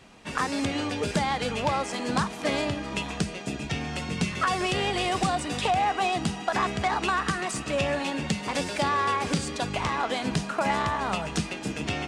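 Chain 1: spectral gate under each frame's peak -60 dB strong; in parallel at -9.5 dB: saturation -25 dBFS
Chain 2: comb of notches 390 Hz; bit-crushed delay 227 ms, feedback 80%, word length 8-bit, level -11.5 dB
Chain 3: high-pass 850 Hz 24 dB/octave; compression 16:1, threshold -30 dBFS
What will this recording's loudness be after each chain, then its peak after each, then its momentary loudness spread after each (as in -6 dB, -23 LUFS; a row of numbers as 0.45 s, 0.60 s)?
-26.0 LUFS, -28.5 LUFS, -34.0 LUFS; -11.5 dBFS, -12.5 dBFS, -14.5 dBFS; 6 LU, 4 LU, 3 LU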